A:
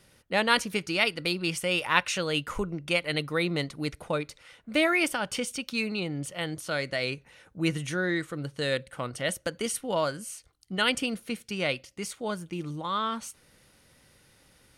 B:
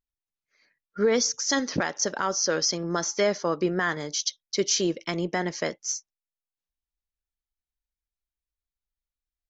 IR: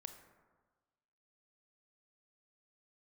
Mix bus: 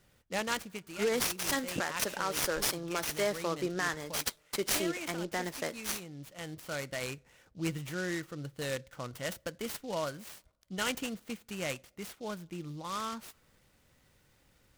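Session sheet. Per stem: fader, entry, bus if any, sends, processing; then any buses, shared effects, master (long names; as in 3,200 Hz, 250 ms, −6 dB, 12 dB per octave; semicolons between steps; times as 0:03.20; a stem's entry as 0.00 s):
−8.0 dB, 0.00 s, send −19 dB, automatic ducking −9 dB, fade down 0.65 s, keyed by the second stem
−6.0 dB, 0.00 s, send −16.5 dB, low-shelf EQ 490 Hz −6 dB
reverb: on, RT60 1.4 s, pre-delay 23 ms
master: low-shelf EQ 85 Hz +7 dB; short delay modulated by noise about 4,100 Hz, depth 0.039 ms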